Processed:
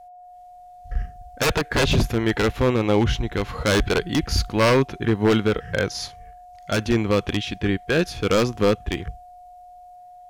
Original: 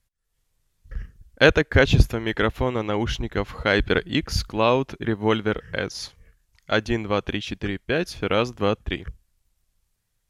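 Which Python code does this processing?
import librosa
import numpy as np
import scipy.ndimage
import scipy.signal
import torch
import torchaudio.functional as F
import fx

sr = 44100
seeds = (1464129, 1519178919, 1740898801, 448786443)

y = x + 10.0 ** (-50.0 / 20.0) * np.sin(2.0 * np.pi * 720.0 * np.arange(len(x)) / sr)
y = 10.0 ** (-15.5 / 20.0) * (np.abs((y / 10.0 ** (-15.5 / 20.0) + 3.0) % 4.0 - 2.0) - 1.0)
y = fx.hpss(y, sr, part='harmonic', gain_db=8)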